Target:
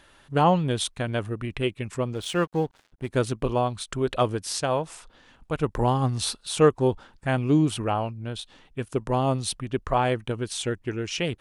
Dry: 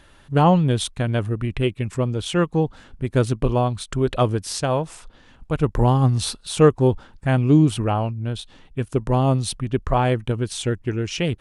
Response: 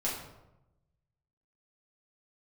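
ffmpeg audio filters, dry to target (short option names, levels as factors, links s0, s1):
-filter_complex "[0:a]asettb=1/sr,asplit=3[s0][s1][s2];[s0]atrim=end=2.134[s3];[s1]atrim=start=2.13:end=3.08,asetpts=PTS-STARTPTS,afade=t=in:d=0.004:c=qsin,afade=t=out:st=0.946:d=0.004:c=qsin,aeval=exprs='sgn(val(0))*max(abs(val(0))-0.0075,0)':c=same[s4];[s2]atrim=start=3.076[s5];[s3][s4]acrossfade=d=0.004:c1=hsin:c2=qsin[s6];[s6][s5]acrossfade=d=0.004:c1=qsin:c2=hsin,lowshelf=f=240:g=-8.5,volume=0.841"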